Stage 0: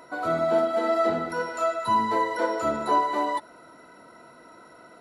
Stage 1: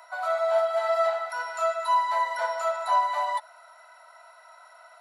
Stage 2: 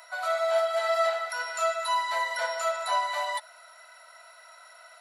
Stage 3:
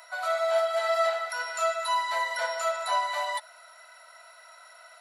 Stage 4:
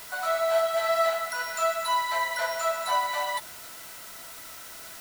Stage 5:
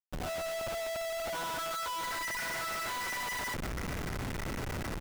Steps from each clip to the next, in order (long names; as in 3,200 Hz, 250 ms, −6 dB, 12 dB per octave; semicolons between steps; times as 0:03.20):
Butterworth high-pass 610 Hz 72 dB per octave
parametric band 890 Hz −12.5 dB 1.4 octaves; level +7 dB
no processing that can be heard
background noise white −45 dBFS; level +1 dB
far-end echo of a speakerphone 150 ms, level −6 dB; band-pass filter sweep 200 Hz → 2,000 Hz, 0:00.01–0:02.38; comparator with hysteresis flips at −47 dBFS